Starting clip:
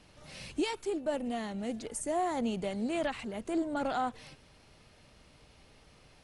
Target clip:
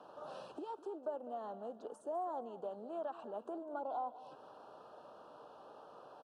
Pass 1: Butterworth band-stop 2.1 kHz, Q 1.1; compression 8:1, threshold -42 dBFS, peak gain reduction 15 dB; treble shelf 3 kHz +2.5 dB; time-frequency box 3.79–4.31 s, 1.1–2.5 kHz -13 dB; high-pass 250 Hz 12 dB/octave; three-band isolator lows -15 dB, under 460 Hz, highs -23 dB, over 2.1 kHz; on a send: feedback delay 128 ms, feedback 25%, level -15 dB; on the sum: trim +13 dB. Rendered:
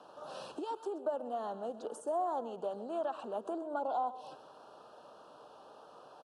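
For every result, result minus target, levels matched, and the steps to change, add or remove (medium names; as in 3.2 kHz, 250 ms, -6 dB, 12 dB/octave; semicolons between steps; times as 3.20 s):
echo 74 ms early; compression: peak gain reduction -5 dB; 4 kHz band +3.0 dB
change: feedback delay 202 ms, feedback 25%, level -15 dB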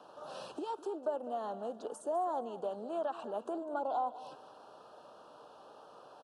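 compression: peak gain reduction -5 dB; 4 kHz band +3.0 dB
change: compression 8:1, threshold -48 dBFS, peak gain reduction 20 dB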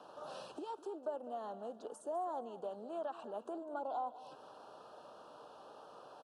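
4 kHz band +5.0 dB
change: treble shelf 3 kHz -6.5 dB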